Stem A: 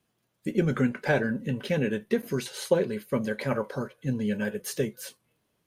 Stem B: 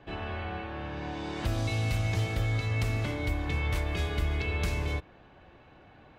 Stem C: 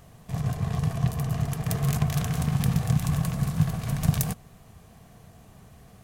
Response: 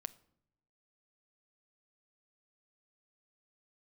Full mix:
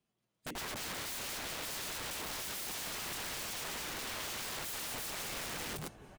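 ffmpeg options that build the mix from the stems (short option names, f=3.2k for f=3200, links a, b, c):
-filter_complex "[0:a]equalizer=f=1.6k:t=o:w=0.24:g=-5.5,dynaudnorm=f=270:g=5:m=9.5dB,flanger=delay=5:depth=7.1:regen=-53:speed=0.37:shape=sinusoidal,volume=-5dB,asplit=3[a][b][c];[b]volume=-9dB[d];[1:a]alimiter=level_in=4dB:limit=-24dB:level=0:latency=1:release=23,volume=-4dB,flanger=delay=4.1:depth=5.6:regen=82:speed=0.54:shape=triangular,adelay=750,volume=2.5dB[e];[2:a]acompressor=threshold=-25dB:ratio=3,adelay=1550,volume=-9.5dB[f];[c]apad=whole_len=334524[g];[f][g]sidechaincompress=threshold=-35dB:ratio=8:attack=16:release=288[h];[d]aecho=0:1:204|408|612|816|1020|1224|1428|1632:1|0.55|0.303|0.166|0.0915|0.0503|0.0277|0.0152[i];[a][e][h][i]amix=inputs=4:normalize=0,equalizer=f=12k:t=o:w=0.26:g=-11.5,aeval=exprs='(mod(63.1*val(0)+1,2)-1)/63.1':c=same"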